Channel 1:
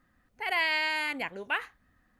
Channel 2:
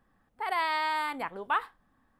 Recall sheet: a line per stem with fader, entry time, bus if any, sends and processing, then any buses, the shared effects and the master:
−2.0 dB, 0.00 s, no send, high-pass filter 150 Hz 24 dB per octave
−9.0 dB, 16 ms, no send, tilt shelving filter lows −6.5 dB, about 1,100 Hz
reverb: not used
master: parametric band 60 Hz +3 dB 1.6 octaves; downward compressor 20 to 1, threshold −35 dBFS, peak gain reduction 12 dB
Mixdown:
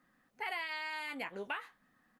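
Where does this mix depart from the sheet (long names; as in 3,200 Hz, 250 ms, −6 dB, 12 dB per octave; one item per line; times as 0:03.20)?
stem 2: polarity flipped
master: missing parametric band 60 Hz +3 dB 1.6 octaves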